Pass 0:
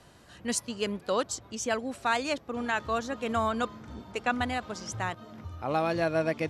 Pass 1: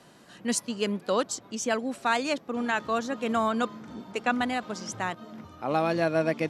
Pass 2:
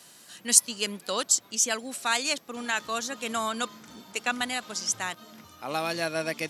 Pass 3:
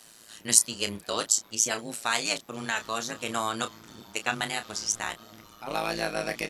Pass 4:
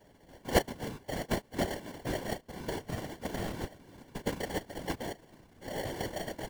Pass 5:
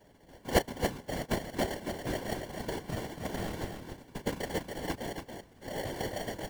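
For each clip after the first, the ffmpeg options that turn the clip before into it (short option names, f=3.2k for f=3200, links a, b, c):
-af "lowshelf=f=120:t=q:w=1.5:g=-13.5,volume=1.5dB"
-af "crystalizer=i=9.5:c=0,volume=-8dB"
-filter_complex "[0:a]tremolo=f=110:d=0.974,asplit=2[a][b];[b]adelay=30,volume=-9.5dB[c];[a][c]amix=inputs=2:normalize=0,volume=3dB"
-af "acrusher=samples=35:mix=1:aa=0.000001,afftfilt=real='hypot(re,im)*cos(2*PI*random(0))':imag='hypot(re,im)*sin(2*PI*random(1))':win_size=512:overlap=0.75"
-af "aecho=1:1:280:0.473"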